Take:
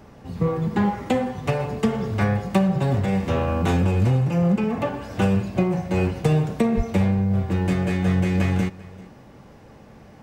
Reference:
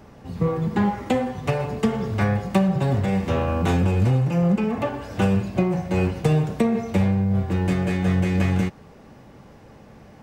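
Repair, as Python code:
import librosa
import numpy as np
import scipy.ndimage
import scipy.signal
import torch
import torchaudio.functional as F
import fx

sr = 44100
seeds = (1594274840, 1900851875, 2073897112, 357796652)

y = fx.highpass(x, sr, hz=140.0, slope=24, at=(6.76, 6.88), fade=0.02)
y = fx.fix_echo_inverse(y, sr, delay_ms=393, level_db=-21.5)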